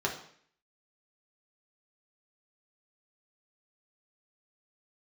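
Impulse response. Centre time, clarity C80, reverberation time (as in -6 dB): 21 ms, 12.0 dB, 0.55 s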